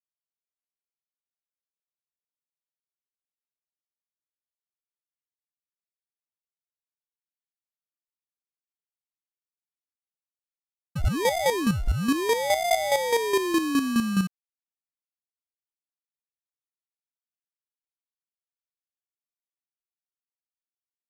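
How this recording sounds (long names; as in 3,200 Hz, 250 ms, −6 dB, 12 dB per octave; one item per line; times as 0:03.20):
aliases and images of a low sample rate 1,400 Hz, jitter 0%
chopped level 4.8 Hz, depth 60%, duty 20%
a quantiser's noise floor 10 bits, dither none
AC-3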